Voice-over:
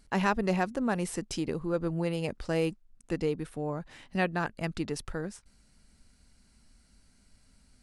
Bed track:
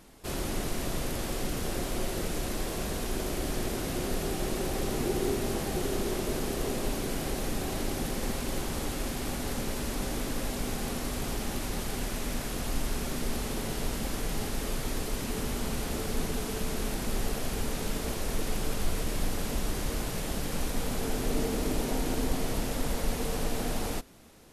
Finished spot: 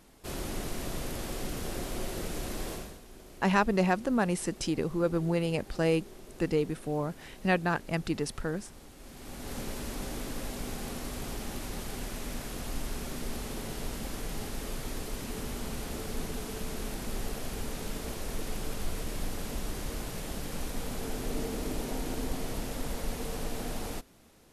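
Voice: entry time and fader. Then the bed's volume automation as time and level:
3.30 s, +2.0 dB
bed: 2.73 s -3.5 dB
3.02 s -18.5 dB
8.95 s -18.5 dB
9.57 s -4.5 dB

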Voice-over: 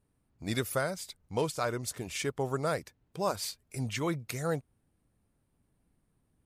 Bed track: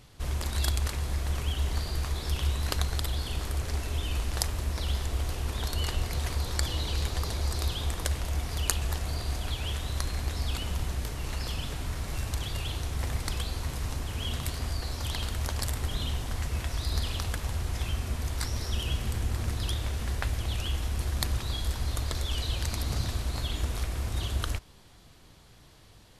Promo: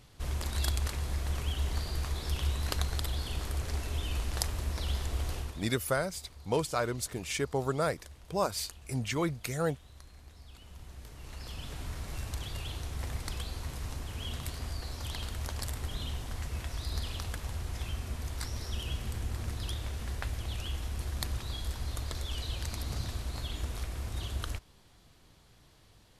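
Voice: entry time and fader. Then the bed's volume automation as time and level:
5.15 s, +1.0 dB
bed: 5.38 s -3 dB
5.74 s -21.5 dB
10.47 s -21.5 dB
11.8 s -5.5 dB

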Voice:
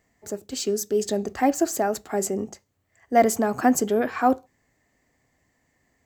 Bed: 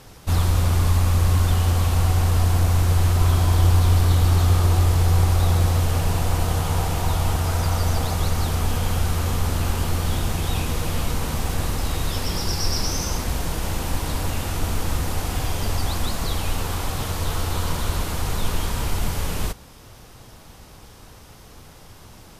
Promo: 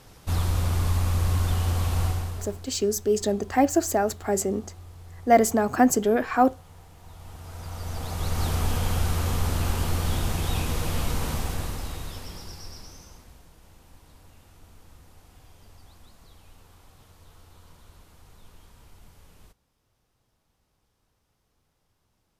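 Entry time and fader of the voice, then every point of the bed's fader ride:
2.15 s, +0.5 dB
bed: 2.06 s -5.5 dB
2.72 s -27 dB
6.97 s -27 dB
8.46 s -3 dB
11.31 s -3 dB
13.51 s -28 dB

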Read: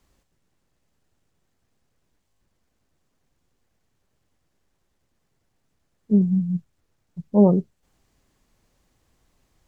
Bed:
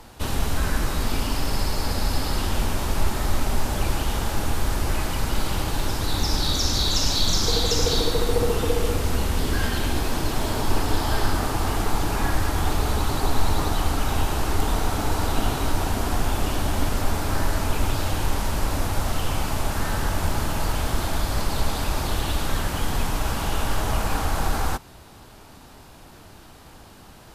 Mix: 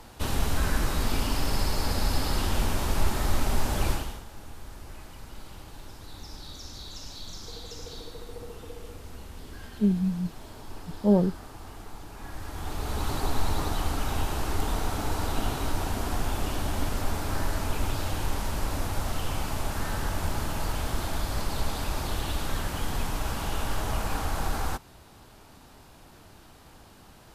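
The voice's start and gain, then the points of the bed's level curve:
3.70 s, -5.5 dB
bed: 3.91 s -2.5 dB
4.25 s -19.5 dB
12.14 s -19.5 dB
13.08 s -5.5 dB

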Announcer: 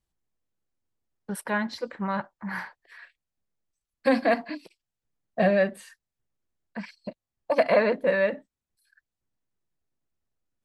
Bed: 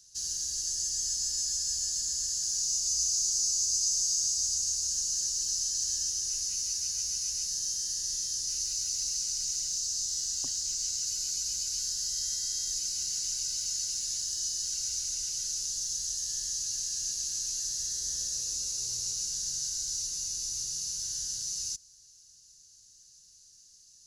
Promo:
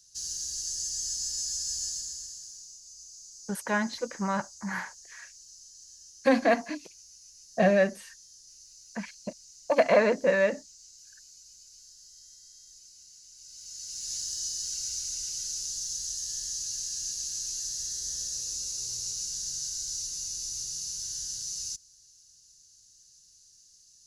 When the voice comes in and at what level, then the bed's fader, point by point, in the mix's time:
2.20 s, -0.5 dB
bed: 1.87 s -1.5 dB
2.79 s -20 dB
13.31 s -20 dB
14.14 s -1 dB

